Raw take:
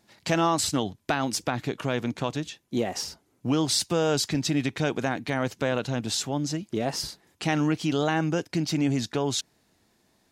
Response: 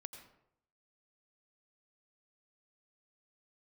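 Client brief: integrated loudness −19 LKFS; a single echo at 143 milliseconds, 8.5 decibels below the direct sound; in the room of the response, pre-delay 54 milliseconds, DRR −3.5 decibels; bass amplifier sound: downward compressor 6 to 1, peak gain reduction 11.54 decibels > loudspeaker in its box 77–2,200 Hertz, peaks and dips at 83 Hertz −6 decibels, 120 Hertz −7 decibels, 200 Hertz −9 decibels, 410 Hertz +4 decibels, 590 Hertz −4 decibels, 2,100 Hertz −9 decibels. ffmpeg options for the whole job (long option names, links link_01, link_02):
-filter_complex "[0:a]aecho=1:1:143:0.376,asplit=2[link_01][link_02];[1:a]atrim=start_sample=2205,adelay=54[link_03];[link_02][link_03]afir=irnorm=-1:irlink=0,volume=8dB[link_04];[link_01][link_04]amix=inputs=2:normalize=0,acompressor=threshold=-24dB:ratio=6,highpass=frequency=77:width=0.5412,highpass=frequency=77:width=1.3066,equalizer=frequency=83:width_type=q:width=4:gain=-6,equalizer=frequency=120:width_type=q:width=4:gain=-7,equalizer=frequency=200:width_type=q:width=4:gain=-9,equalizer=frequency=410:width_type=q:width=4:gain=4,equalizer=frequency=590:width_type=q:width=4:gain=-4,equalizer=frequency=2100:width_type=q:width=4:gain=-9,lowpass=frequency=2200:width=0.5412,lowpass=frequency=2200:width=1.3066,volume=11.5dB"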